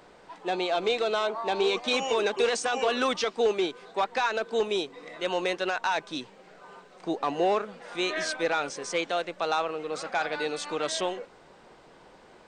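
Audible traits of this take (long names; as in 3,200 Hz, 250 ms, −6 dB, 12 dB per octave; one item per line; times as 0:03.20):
background noise floor −54 dBFS
spectral slope −2.5 dB per octave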